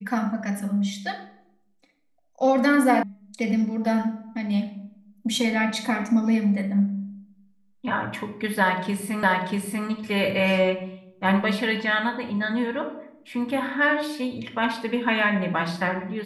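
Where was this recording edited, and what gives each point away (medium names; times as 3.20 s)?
3.03 s: sound stops dead
9.23 s: repeat of the last 0.64 s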